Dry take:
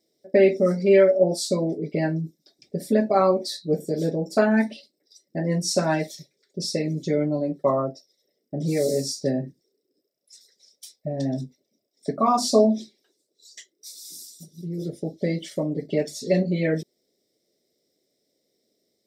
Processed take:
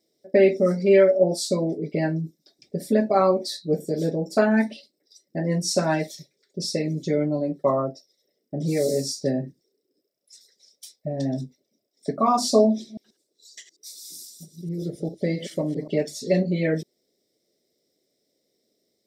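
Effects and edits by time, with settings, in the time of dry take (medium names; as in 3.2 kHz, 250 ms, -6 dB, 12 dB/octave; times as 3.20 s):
12.71–15.97 s: chunks repeated in reverse 132 ms, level -12 dB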